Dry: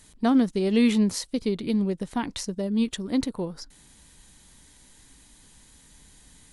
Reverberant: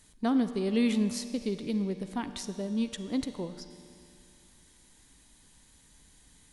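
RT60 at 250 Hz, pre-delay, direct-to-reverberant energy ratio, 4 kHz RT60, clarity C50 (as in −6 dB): 2.6 s, 37 ms, 9.5 dB, 2.3 s, 10.0 dB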